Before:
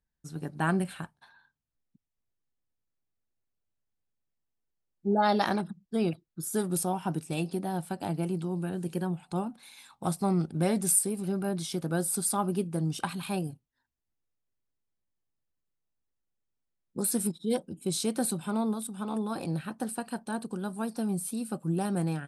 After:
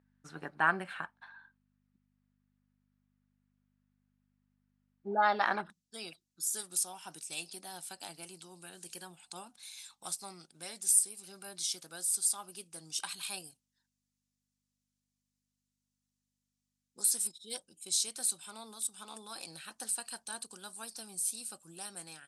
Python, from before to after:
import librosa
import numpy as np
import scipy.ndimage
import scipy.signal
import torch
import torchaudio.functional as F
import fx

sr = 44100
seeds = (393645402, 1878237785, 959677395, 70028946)

y = fx.add_hum(x, sr, base_hz=50, snr_db=25)
y = fx.rider(y, sr, range_db=4, speed_s=0.5)
y = fx.bandpass_q(y, sr, hz=fx.steps((0.0, 1500.0), (5.7, 6500.0)), q=1.3)
y = F.gain(torch.from_numpy(y), 6.0).numpy()